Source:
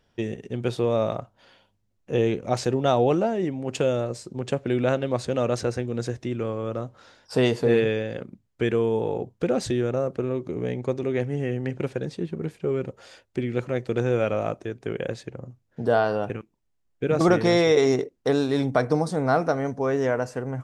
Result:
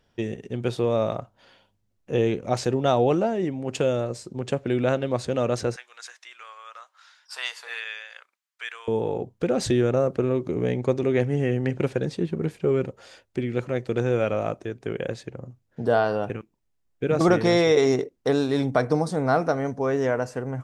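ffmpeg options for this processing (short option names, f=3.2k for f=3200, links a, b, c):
-filter_complex "[0:a]asettb=1/sr,asplit=3[a][b][c];[a]atrim=end=5.764[d];[b]atrim=start=5.76:end=8.88,asetpts=PTS-STARTPTS,afade=t=in:d=0.004:c=qsin,afade=t=out:st=3.116:d=0.004:c=qsin,highpass=f=1.1k:w=0.5412,highpass=f=1.1k:w=1.3066[e];[c]atrim=start=8.876[f];[d][e]acrossfade=d=0.004:c1=hsin:c2=qsin[g];[g][f]acrossfade=d=0.004:c1=qsin:c2=hsin,asplit=3[h][i][j];[h]atrim=end=9.592[k];[i]atrim=start=9.588:end=12.872,asetpts=PTS-STARTPTS,volume=3.5dB[l];[j]atrim=start=12.868[m];[k][l]acrossfade=d=0.004:c1=hsin:c2=hsin[n];[n][m]acrossfade=d=0.004:c1=hsin:c2=hsin"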